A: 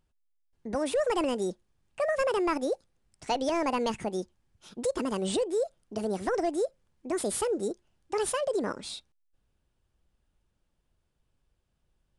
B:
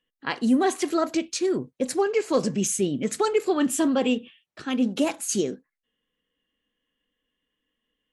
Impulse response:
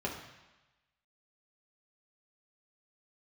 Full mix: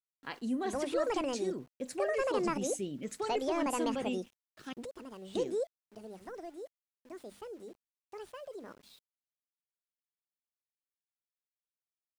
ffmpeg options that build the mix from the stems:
-filter_complex "[0:a]bandreject=frequency=50:width_type=h:width=6,bandreject=frequency=100:width_type=h:width=6,bandreject=frequency=150:width_type=h:width=6,bandreject=frequency=200:width_type=h:width=6,bandreject=frequency=250:width_type=h:width=6,bandreject=frequency=300:width_type=h:width=6,acrossover=split=4800[link_01][link_02];[link_02]acompressor=threshold=-48dB:ratio=4:attack=1:release=60[link_03];[link_01][link_03]amix=inputs=2:normalize=0,volume=-5.5dB[link_04];[1:a]volume=-13.5dB,asplit=3[link_05][link_06][link_07];[link_05]atrim=end=4.73,asetpts=PTS-STARTPTS,afade=type=out:start_time=4.726:duration=0.004:curve=hsin[link_08];[link_06]atrim=start=4.73:end=5.35,asetpts=PTS-STARTPTS,volume=0[link_09];[link_07]atrim=start=5.35,asetpts=PTS-STARTPTS,afade=type=in:duration=0.004:curve=hsin[link_10];[link_08][link_09][link_10]concat=n=3:v=0:a=1,asplit=2[link_11][link_12];[link_12]apad=whole_len=537423[link_13];[link_04][link_13]sidechaingate=range=-11dB:threshold=-56dB:ratio=16:detection=peak[link_14];[link_14][link_11]amix=inputs=2:normalize=0,aeval=exprs='val(0)*gte(abs(val(0)),0.00119)':channel_layout=same"

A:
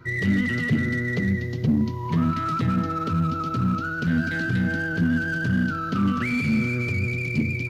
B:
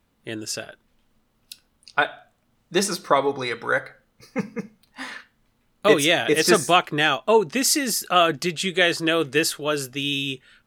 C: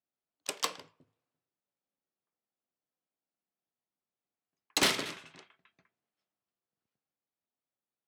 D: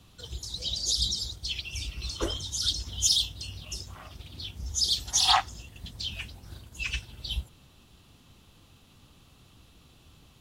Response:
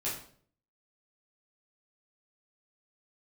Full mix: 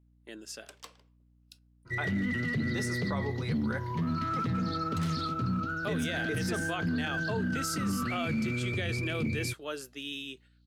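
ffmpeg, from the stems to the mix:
-filter_complex "[0:a]adynamicequalizer=threshold=0.01:dfrequency=2300:dqfactor=0.7:tfrequency=2300:tqfactor=0.7:attack=5:release=100:ratio=0.375:range=2:mode=cutabove:tftype=highshelf,adelay=1850,volume=-5.5dB[link_01];[1:a]highpass=frequency=180:width=0.5412,highpass=frequency=180:width=1.3066,agate=range=-11dB:threshold=-44dB:ratio=16:detection=peak,aeval=exprs='val(0)+0.00355*(sin(2*PI*60*n/s)+sin(2*PI*2*60*n/s)/2+sin(2*PI*3*60*n/s)/3+sin(2*PI*4*60*n/s)/4+sin(2*PI*5*60*n/s)/5)':channel_layout=same,volume=-13.5dB,asplit=2[link_02][link_03];[2:a]adelay=200,volume=-16dB[link_04];[3:a]bandpass=frequency=4300:width_type=q:width=9.2:csg=0,adelay=2050,volume=-9dB[link_05];[link_03]apad=whole_len=549175[link_06];[link_05][link_06]sidechaincompress=threshold=-38dB:ratio=8:attack=16:release=571[link_07];[link_01][link_02][link_04][link_07]amix=inputs=4:normalize=0,alimiter=limit=-23.5dB:level=0:latency=1:release=11"

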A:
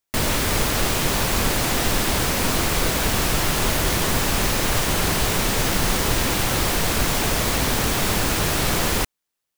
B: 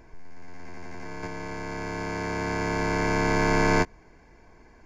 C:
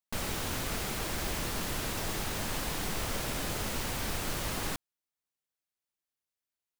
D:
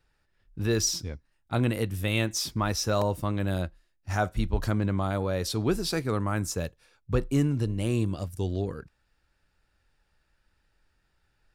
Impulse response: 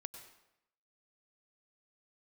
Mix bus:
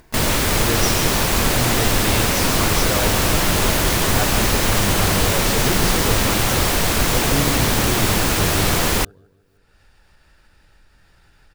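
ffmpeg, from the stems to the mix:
-filter_complex "[0:a]volume=3dB[link_01];[1:a]volume=-14dB[link_02];[2:a]volume=-1dB[link_03];[3:a]volume=0.5dB,asplit=2[link_04][link_05];[link_05]volume=-6dB,aecho=0:1:154|308|462|616|770|924:1|0.45|0.202|0.0911|0.041|0.0185[link_06];[link_01][link_02][link_03][link_04][link_06]amix=inputs=5:normalize=0,acompressor=mode=upward:threshold=-39dB:ratio=2.5"

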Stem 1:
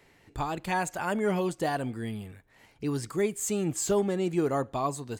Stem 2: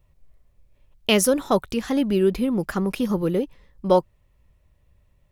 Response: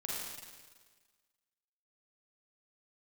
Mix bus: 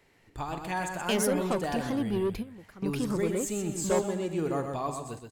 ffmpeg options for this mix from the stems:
-filter_complex "[0:a]volume=-5.5dB,asplit=4[link_01][link_02][link_03][link_04];[link_02]volume=-10.5dB[link_05];[link_03]volume=-4.5dB[link_06];[1:a]asoftclip=type=tanh:threshold=-17.5dB,volume=-6dB[link_07];[link_04]apad=whole_len=234371[link_08];[link_07][link_08]sidechaingate=range=-17dB:threshold=-57dB:ratio=16:detection=peak[link_09];[2:a]atrim=start_sample=2205[link_10];[link_05][link_10]afir=irnorm=-1:irlink=0[link_11];[link_06]aecho=0:1:126|252|378|504:1|0.29|0.0841|0.0244[link_12];[link_01][link_09][link_11][link_12]amix=inputs=4:normalize=0"

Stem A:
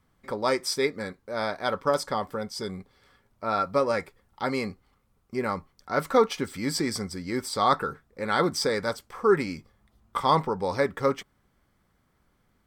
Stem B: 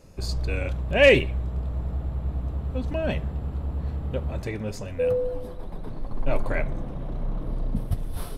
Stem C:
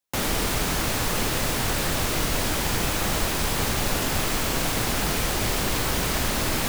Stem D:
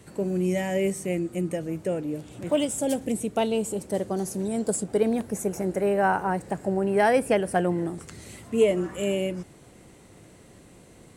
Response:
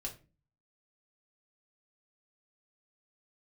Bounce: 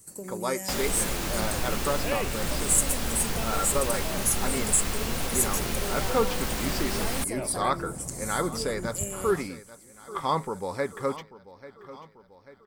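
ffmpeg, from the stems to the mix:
-filter_complex "[0:a]equalizer=frequency=8600:width_type=o:width=0.77:gain=-8.5,volume=-4.5dB,asplit=2[link_01][link_02];[link_02]volume=-16.5dB[link_03];[1:a]highpass=63,adelay=1100,volume=-4.5dB[link_04];[2:a]adelay=550,volume=-5.5dB,asplit=2[link_05][link_06];[link_06]volume=-6.5dB[link_07];[3:a]acompressor=threshold=-28dB:ratio=4,aexciter=amount=10.4:drive=5.9:freq=5100,agate=range=-6dB:threshold=-37dB:ratio=16:detection=peak,volume=-8.5dB[link_08];[link_04][link_05]amix=inputs=2:normalize=0,acompressor=threshold=-32dB:ratio=3,volume=0dB[link_09];[4:a]atrim=start_sample=2205[link_10];[link_07][link_10]afir=irnorm=-1:irlink=0[link_11];[link_03]aecho=0:1:840|1680|2520|3360|4200|5040|5880|6720:1|0.55|0.303|0.166|0.0915|0.0503|0.0277|0.0152[link_12];[link_01][link_08][link_09][link_11][link_12]amix=inputs=5:normalize=0"

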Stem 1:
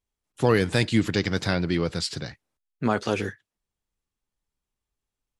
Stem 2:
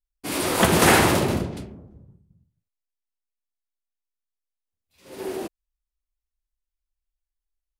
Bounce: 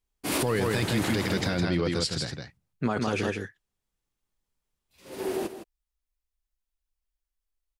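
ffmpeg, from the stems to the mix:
ffmpeg -i stem1.wav -i stem2.wav -filter_complex "[0:a]volume=0dB,asplit=3[link_01][link_02][link_03];[link_02]volume=-5dB[link_04];[1:a]acompressor=threshold=-18dB:ratio=6,volume=0dB,asplit=2[link_05][link_06];[link_06]volume=-11dB[link_07];[link_03]apad=whole_len=343575[link_08];[link_05][link_08]sidechaincompress=threshold=-34dB:ratio=8:attack=16:release=889[link_09];[link_04][link_07]amix=inputs=2:normalize=0,aecho=0:1:161:1[link_10];[link_01][link_09][link_10]amix=inputs=3:normalize=0,alimiter=limit=-17dB:level=0:latency=1:release=10" out.wav

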